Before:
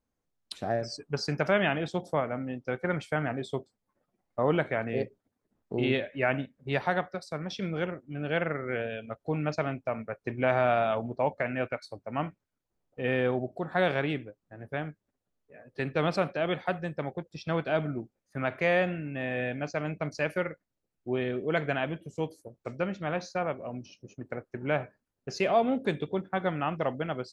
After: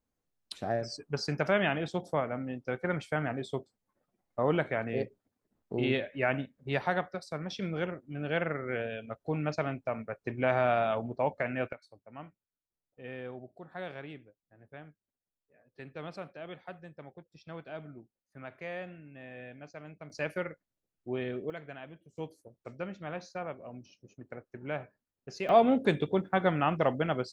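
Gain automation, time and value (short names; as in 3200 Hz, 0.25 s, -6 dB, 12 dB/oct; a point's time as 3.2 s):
-2 dB
from 11.73 s -14.5 dB
from 20.1 s -4.5 dB
from 21.5 s -15.5 dB
from 22.17 s -7.5 dB
from 25.49 s +2.5 dB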